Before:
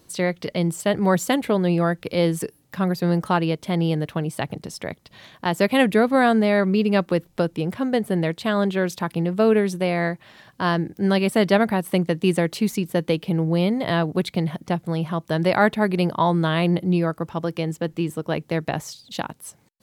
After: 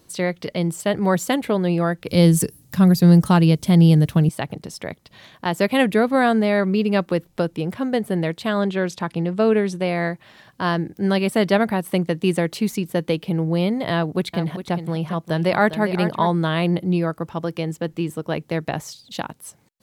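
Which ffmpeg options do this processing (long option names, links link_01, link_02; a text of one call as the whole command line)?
ffmpeg -i in.wav -filter_complex "[0:a]asettb=1/sr,asplit=3[link_01][link_02][link_03];[link_01]atrim=end=2.084[link_04];[link_02]atrim=start=2.08:end=4.29,asetpts=PTS-STARTPTS,afade=type=in:duration=0.004:curve=qsin,afade=type=out:start_time=2.206:duration=0.004:curve=qsin,bass=frequency=250:gain=13,treble=frequency=4000:gain=11[link_05];[link_03]atrim=start=4.286[link_06];[link_04][link_05]acrossfade=duration=0.004:curve1=hsin:curve2=qsin[link_07];[link_07][link_06]acrossfade=duration=0.004:curve1=qsin:curve2=hsin,asettb=1/sr,asplit=3[link_08][link_09][link_10];[link_08]atrim=end=8.594[link_11];[link_09]atrim=start=8.59:end=9.87,asetpts=PTS-STARTPTS,afade=type=in:duration=0.004:curve=qsin,afade=type=out:start_time=1.276:duration=0.004:curve=qsin,lowpass=8700[link_12];[link_10]atrim=start=9.866[link_13];[link_11][link_12]acrossfade=duration=0.004:curve1=hsin:curve2=qsin[link_14];[link_14][link_13]acrossfade=duration=0.004:curve1=qsin:curve2=hsin,asettb=1/sr,asplit=3[link_15][link_16][link_17];[link_15]atrim=end=13.934[link_18];[link_16]atrim=start=13.93:end=16.3,asetpts=PTS-STARTPTS,afade=type=in:duration=0.004:curve=qsin,afade=type=out:start_time=2.366:duration=0.004:curve=qsin,aecho=1:1:403:0.299,atrim=end_sample=104517[link_19];[link_17]atrim=start=16.296[link_20];[link_18][link_19]acrossfade=duration=0.004:curve1=hsin:curve2=qsin[link_21];[link_21][link_20]acrossfade=duration=0.004:curve1=qsin:curve2=hsin" out.wav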